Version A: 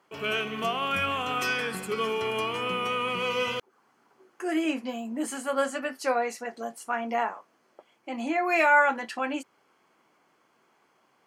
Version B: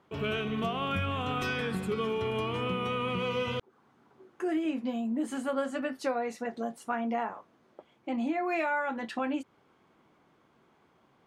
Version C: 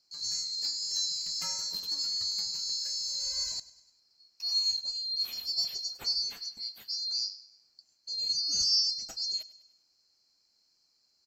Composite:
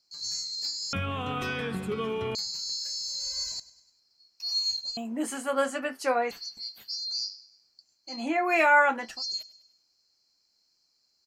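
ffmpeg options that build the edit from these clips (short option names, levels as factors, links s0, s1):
-filter_complex "[0:a]asplit=2[s0][s1];[2:a]asplit=4[s2][s3][s4][s5];[s2]atrim=end=0.932[s6];[1:a]atrim=start=0.928:end=2.352[s7];[s3]atrim=start=2.348:end=4.972[s8];[s0]atrim=start=4.968:end=6.312[s9];[s4]atrim=start=6.308:end=8.27[s10];[s1]atrim=start=8.03:end=9.23[s11];[s5]atrim=start=8.99[s12];[s6][s7]acrossfade=d=0.004:c1=hsin:c2=hsin[s13];[s13][s8]acrossfade=d=0.004:c1=hsin:c2=hsin[s14];[s14][s9]acrossfade=d=0.004:c1=hsin:c2=hsin[s15];[s15][s10]acrossfade=d=0.004:c1=hsin:c2=hsin[s16];[s16][s11]acrossfade=d=0.24:c1=tri:c2=tri[s17];[s17][s12]acrossfade=d=0.24:c1=tri:c2=tri"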